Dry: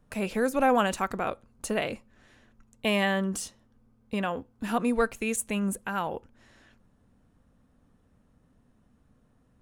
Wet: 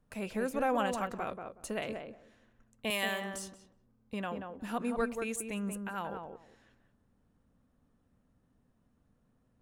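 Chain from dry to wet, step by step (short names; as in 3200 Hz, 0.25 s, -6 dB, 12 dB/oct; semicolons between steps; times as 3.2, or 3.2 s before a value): 2.9–3.34 RIAA curve recording; tape echo 0.183 s, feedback 20%, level -3.5 dB, low-pass 1100 Hz; gain -8 dB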